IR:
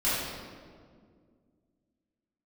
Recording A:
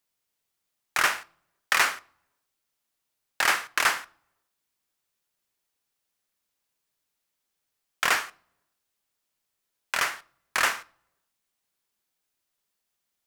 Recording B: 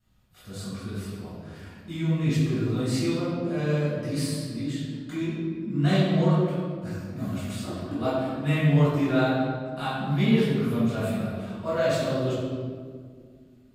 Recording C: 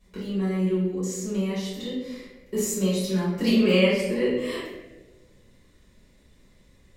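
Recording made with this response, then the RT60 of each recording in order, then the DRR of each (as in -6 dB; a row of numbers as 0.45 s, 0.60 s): B; no single decay rate, 2.0 s, 1.3 s; 15.5 dB, -12.0 dB, -10.5 dB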